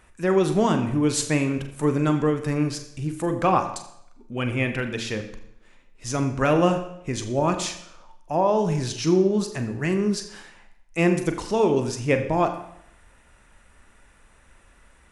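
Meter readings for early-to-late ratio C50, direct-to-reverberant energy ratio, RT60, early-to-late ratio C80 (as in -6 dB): 10.5 dB, 6.5 dB, 0.75 s, 11.5 dB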